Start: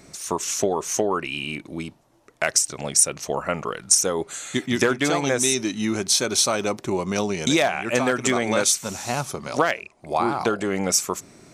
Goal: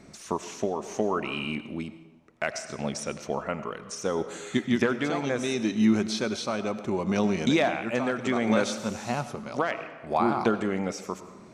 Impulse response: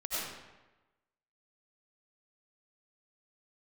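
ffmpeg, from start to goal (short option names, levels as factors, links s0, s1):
-filter_complex "[0:a]acrossover=split=4900[s0][s1];[s1]acompressor=threshold=0.0251:ratio=4:attack=1:release=60[s2];[s0][s2]amix=inputs=2:normalize=0,aemphasis=mode=reproduction:type=50kf,asplit=2[s3][s4];[1:a]atrim=start_sample=2205[s5];[s4][s5]afir=irnorm=-1:irlink=0,volume=0.168[s6];[s3][s6]amix=inputs=2:normalize=0,tremolo=f=0.68:d=0.41,equalizer=f=220:w=5.9:g=8,volume=0.708"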